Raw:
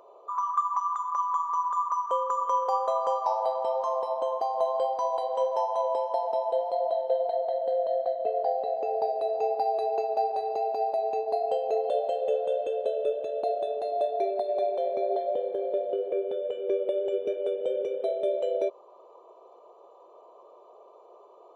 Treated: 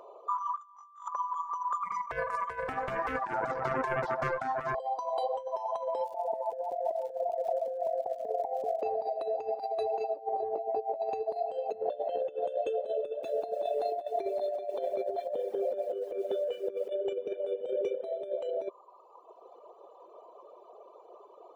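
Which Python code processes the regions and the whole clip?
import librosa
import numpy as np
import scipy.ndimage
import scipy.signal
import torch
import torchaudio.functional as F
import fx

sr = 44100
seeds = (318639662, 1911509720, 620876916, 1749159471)

y = fx.chain(x, sr, fx.high_shelf(hz=3000.0, db=10.5),
    fx.room_flutter(wall_m=3.5, rt60_s=1.1),
    fx.env_flatten(amount_pct=70), at=(0.61, 1.08))
y = fx.chain(y, sr, fx.steep_highpass(hz=510.0, slope=72),
    fx.doppler_dist(depth_ms=0.59), at=(1.83, 4.75))
y = fx.cheby1_lowpass(y, sr, hz=950.0, order=6, at=(6.04, 8.8), fade=0.02)
y = fx.dmg_crackle(y, sr, seeds[0], per_s=210.0, level_db=-45.0, at=(6.04, 8.8), fade=0.02)
y = fx.chain(y, sr, fx.over_compress(threshold_db=-30.0, ratio=-0.5),
    fx.bandpass_q(hz=360.0, q=0.65),
    fx.doubler(ms=18.0, db=-7), at=(10.16, 11.02))
y = fx.chain(y, sr, fx.over_compress(threshold_db=-30.0, ratio=-0.5),
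    fx.air_absorb(metres=180.0), at=(11.72, 12.41))
y = fx.chain(y, sr, fx.highpass(hz=110.0, slope=12),
    fx.echo_feedback(ms=68, feedback_pct=32, wet_db=-18.0),
    fx.echo_crushed(ms=181, feedback_pct=55, bits=9, wet_db=-10.0), at=(13.05, 16.9))
y = fx.dereverb_blind(y, sr, rt60_s=1.3)
y = fx.high_shelf(y, sr, hz=5200.0, db=-3.5)
y = fx.over_compress(y, sr, threshold_db=-32.0, ratio=-0.5)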